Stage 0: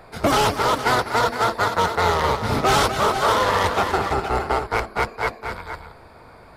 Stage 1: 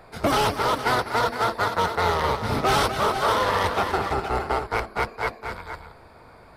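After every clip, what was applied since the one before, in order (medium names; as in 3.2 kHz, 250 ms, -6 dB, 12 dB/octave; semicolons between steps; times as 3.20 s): dynamic bell 7 kHz, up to -7 dB, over -51 dBFS, Q 4.8; trim -3 dB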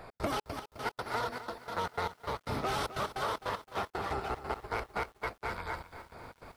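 compression 4:1, threshold -33 dBFS, peak gain reduction 13.5 dB; trance gate "x.xx.x..x.xxxx." 152 bpm -60 dB; bit-crushed delay 259 ms, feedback 55%, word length 9-bit, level -13 dB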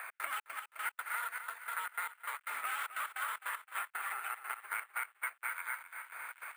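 Butterworth band-pass 1.9 kHz, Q 1.4; careless resampling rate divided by 4×, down none, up hold; three bands compressed up and down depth 70%; trim +3 dB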